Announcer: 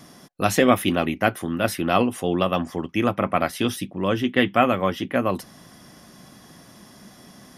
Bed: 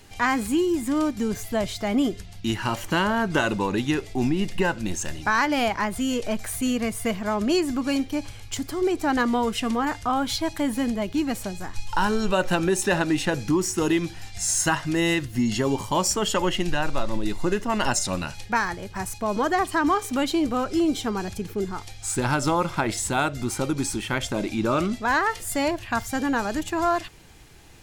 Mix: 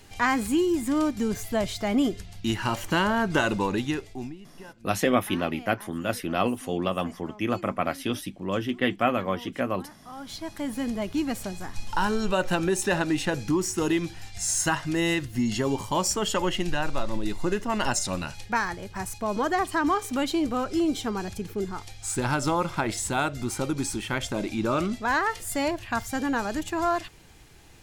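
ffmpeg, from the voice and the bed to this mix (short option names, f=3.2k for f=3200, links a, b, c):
-filter_complex "[0:a]adelay=4450,volume=-5.5dB[a];[1:a]volume=19dB,afade=t=out:st=3.66:d=0.73:silence=0.0841395,afade=t=in:st=10.05:d=1.01:silence=0.1[b];[a][b]amix=inputs=2:normalize=0"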